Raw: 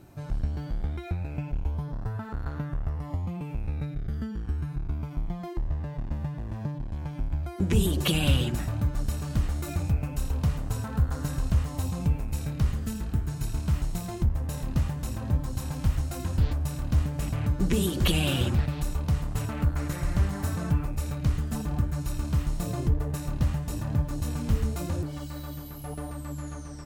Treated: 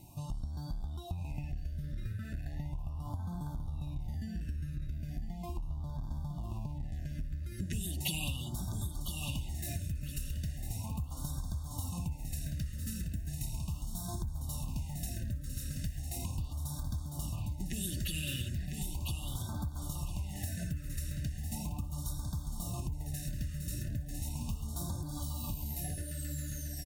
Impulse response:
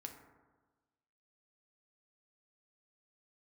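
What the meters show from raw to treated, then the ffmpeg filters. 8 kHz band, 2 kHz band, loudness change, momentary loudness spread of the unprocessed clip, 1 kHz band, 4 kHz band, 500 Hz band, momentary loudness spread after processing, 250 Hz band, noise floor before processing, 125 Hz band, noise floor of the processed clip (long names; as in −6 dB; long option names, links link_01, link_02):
−1.5 dB, −9.5 dB, −9.0 dB, 9 LU, −10.0 dB, −8.0 dB, −15.5 dB, 4 LU, −11.0 dB, −38 dBFS, −9.5 dB, −42 dBFS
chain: -af "aecho=1:1:1.1:0.69,aecho=1:1:1002|2004|3006:0.422|0.101|0.0243,acompressor=threshold=-29dB:ratio=6,equalizer=frequency=13000:width_type=o:width=2.3:gain=11.5,afftfilt=real='re*(1-between(b*sr/1024,860*pow(2300/860,0.5+0.5*sin(2*PI*0.37*pts/sr))/1.41,860*pow(2300/860,0.5+0.5*sin(2*PI*0.37*pts/sr))*1.41))':imag='im*(1-between(b*sr/1024,860*pow(2300/860,0.5+0.5*sin(2*PI*0.37*pts/sr))/1.41,860*pow(2300/860,0.5+0.5*sin(2*PI*0.37*pts/sr))*1.41))':win_size=1024:overlap=0.75,volume=-5.5dB"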